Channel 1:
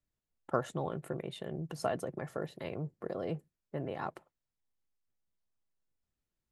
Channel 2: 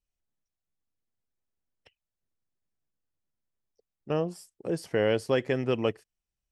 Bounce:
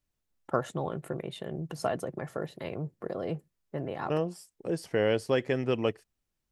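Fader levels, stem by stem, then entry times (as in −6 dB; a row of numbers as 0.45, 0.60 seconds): +3.0, −1.0 decibels; 0.00, 0.00 seconds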